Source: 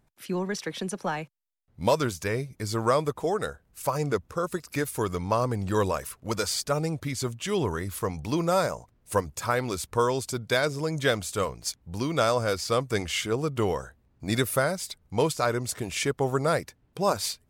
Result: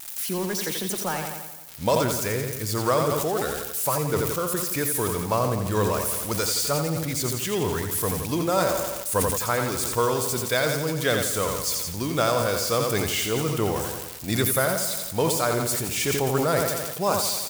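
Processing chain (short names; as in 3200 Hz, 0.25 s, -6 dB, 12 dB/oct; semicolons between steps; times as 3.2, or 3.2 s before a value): switching spikes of -25 dBFS; feedback echo 86 ms, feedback 58%, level -7 dB; sustainer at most 34 dB/s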